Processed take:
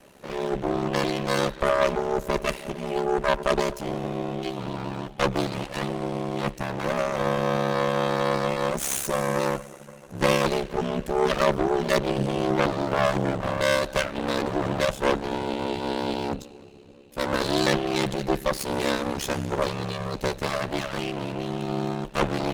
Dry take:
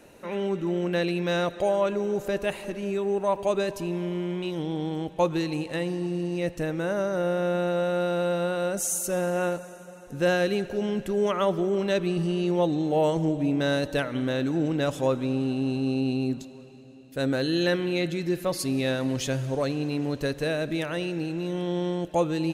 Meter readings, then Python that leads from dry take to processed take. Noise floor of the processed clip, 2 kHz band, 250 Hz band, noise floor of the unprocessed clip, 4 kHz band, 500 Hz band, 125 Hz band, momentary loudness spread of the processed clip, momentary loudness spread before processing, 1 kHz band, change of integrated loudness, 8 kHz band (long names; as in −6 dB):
−46 dBFS, +4.0 dB, −2.0 dB, −45 dBFS, +4.0 dB, +0.5 dB, −0.5 dB, 8 LU, 6 LU, +6.0 dB, +1.0 dB, +1.0 dB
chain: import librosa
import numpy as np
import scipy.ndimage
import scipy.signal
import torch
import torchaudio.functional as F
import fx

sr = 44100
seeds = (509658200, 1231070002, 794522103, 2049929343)

y = fx.lower_of_two(x, sr, delay_ms=5.2)
y = fx.cheby_harmonics(y, sr, harmonics=(6,), levels_db=(-12,), full_scale_db=-12.5)
y = y * np.sin(2.0 * np.pi * 34.0 * np.arange(len(y)) / sr)
y = y * 10.0 ** (4.0 / 20.0)